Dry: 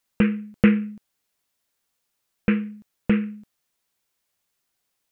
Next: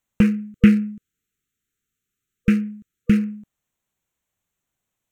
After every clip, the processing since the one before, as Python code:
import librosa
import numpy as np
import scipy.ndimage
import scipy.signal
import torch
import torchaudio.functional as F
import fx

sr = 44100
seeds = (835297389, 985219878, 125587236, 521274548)

y = fx.wiener(x, sr, points=9)
y = fx.spec_erase(y, sr, start_s=0.31, length_s=2.86, low_hz=480.0, high_hz=1200.0)
y = fx.bass_treble(y, sr, bass_db=9, treble_db=15)
y = y * 10.0 ** (-2.0 / 20.0)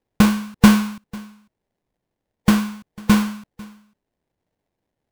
y = fx.sample_hold(x, sr, seeds[0], rate_hz=1300.0, jitter_pct=20)
y = y + 10.0 ** (-23.0 / 20.0) * np.pad(y, (int(497 * sr / 1000.0), 0))[:len(y)]
y = y * 10.0 ** (2.0 / 20.0)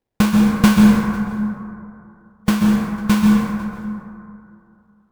y = fx.rev_plate(x, sr, seeds[1], rt60_s=2.6, hf_ratio=0.3, predelay_ms=115, drr_db=-0.5)
y = y * 10.0 ** (-2.0 / 20.0)